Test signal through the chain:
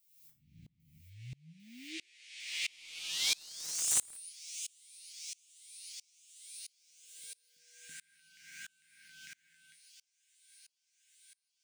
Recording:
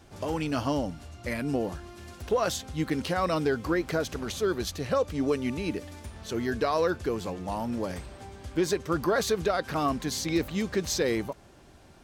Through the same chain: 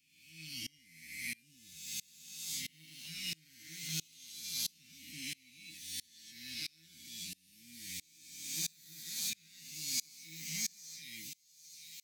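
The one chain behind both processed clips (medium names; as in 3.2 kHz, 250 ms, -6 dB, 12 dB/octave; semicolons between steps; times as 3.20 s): reverse spectral sustain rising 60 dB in 2.69 s; Chebyshev band-stop 250–2200 Hz, order 4; tilt EQ +4.5 dB/octave; harmonic-percussive split percussive -6 dB; peaking EQ 8.2 kHz -5.5 dB 2.7 oct; compression 1.5:1, threshold -36 dBFS; saturation -22.5 dBFS; feedback comb 160 Hz, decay 0.24 s, harmonics all, mix 90%; level rider gain up to 4 dB; feedback echo behind a high-pass 799 ms, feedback 74%, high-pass 2.9 kHz, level -13 dB; integer overflow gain 23 dB; sawtooth tremolo in dB swelling 1.5 Hz, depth 30 dB; trim +5 dB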